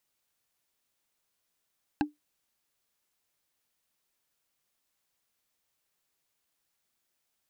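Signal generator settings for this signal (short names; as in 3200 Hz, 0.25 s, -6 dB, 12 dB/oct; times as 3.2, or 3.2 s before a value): wood hit, lowest mode 297 Hz, decay 0.16 s, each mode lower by 3 dB, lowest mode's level -20 dB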